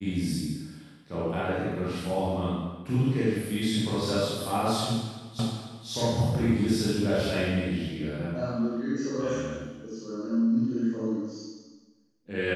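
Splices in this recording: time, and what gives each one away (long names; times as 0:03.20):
0:05.39: the same again, the last 0.49 s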